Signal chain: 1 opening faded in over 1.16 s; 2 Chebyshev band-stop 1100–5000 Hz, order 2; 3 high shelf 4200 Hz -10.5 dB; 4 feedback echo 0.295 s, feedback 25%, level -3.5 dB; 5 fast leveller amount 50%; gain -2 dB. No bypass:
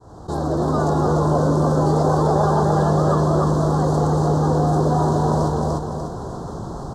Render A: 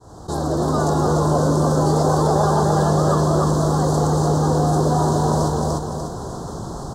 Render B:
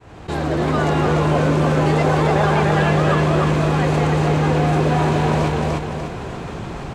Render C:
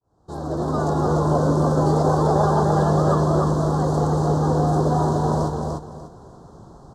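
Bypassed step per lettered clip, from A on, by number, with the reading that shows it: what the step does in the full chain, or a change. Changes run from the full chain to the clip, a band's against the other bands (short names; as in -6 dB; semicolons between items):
3, 8 kHz band +7.5 dB; 2, 2 kHz band +12.5 dB; 5, momentary loudness spread change -2 LU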